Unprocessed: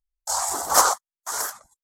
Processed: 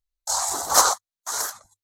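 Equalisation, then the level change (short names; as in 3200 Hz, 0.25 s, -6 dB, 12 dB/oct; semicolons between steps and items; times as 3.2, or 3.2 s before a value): thirty-one-band EQ 100 Hz +11 dB, 4000 Hz +8 dB, 6300 Hz +4 dB; -1.0 dB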